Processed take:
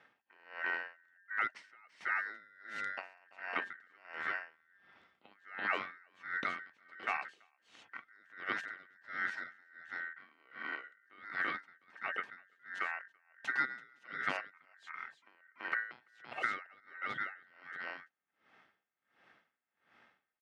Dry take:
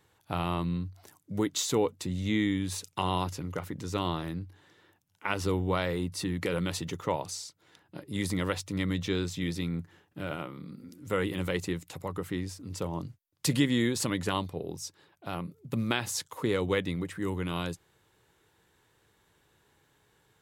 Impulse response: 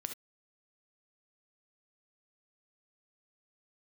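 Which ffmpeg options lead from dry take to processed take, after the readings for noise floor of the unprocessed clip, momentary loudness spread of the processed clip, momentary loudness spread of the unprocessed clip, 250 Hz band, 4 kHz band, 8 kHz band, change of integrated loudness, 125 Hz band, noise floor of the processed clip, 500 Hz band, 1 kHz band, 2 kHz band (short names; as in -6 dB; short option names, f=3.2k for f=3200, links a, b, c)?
-70 dBFS, 17 LU, 11 LU, -25.5 dB, -15.5 dB, under -25 dB, -7.5 dB, -33.0 dB, -85 dBFS, -19.0 dB, -5.0 dB, +2.5 dB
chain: -af "acompressor=threshold=-41dB:ratio=2,aeval=exprs='val(0)*sin(2*PI*1700*n/s)':c=same,highpass=180,lowpass=2.3k,aecho=1:1:335:0.531,aeval=exprs='val(0)*pow(10,-30*(0.5-0.5*cos(2*PI*1.4*n/s))/20)':c=same,volume=8dB"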